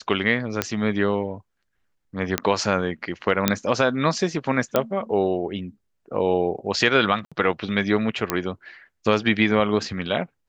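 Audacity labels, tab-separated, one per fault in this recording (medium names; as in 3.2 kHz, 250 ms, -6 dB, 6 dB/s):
0.620000	0.620000	pop -5 dBFS
2.380000	2.380000	pop -4 dBFS
3.480000	3.480000	pop -1 dBFS
4.760000	4.760000	pop -6 dBFS
7.250000	7.320000	dropout 66 ms
8.300000	8.300000	pop -5 dBFS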